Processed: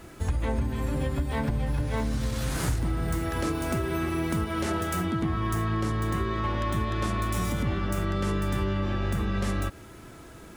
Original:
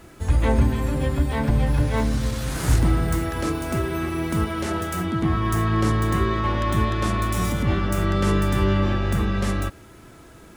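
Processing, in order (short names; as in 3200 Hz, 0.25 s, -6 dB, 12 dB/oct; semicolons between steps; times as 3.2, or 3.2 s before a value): compressor, threshold -24 dBFS, peak gain reduction 11 dB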